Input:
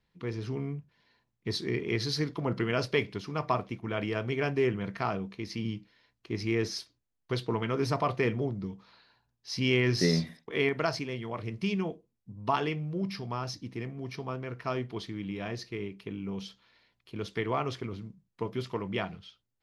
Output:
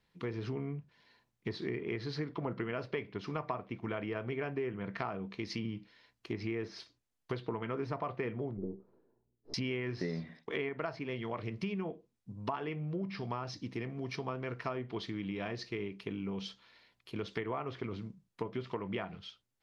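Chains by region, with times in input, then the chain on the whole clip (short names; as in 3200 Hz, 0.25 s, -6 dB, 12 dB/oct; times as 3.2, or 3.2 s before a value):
8.57–9.54 half-wave gain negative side -12 dB + synth low-pass 390 Hz, resonance Q 3.1
whole clip: treble ducked by the level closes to 2300 Hz, closed at -29 dBFS; low shelf 180 Hz -5.5 dB; compressor, threshold -36 dBFS; gain +2.5 dB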